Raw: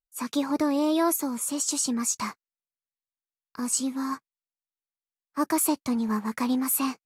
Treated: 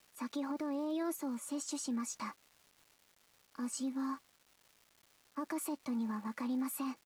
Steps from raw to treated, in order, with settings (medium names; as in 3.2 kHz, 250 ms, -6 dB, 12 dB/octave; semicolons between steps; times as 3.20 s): high-pass 170 Hz 12 dB/octave; treble shelf 4.5 kHz -11 dB; comb 3.5 ms, depth 52%; peak limiter -21 dBFS, peak gain reduction 10 dB; crackle 590 per s -44 dBFS; trim -9 dB